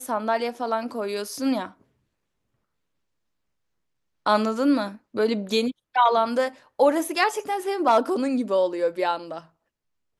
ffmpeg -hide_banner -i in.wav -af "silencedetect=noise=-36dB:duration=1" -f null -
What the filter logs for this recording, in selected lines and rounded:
silence_start: 1.68
silence_end: 4.26 | silence_duration: 2.58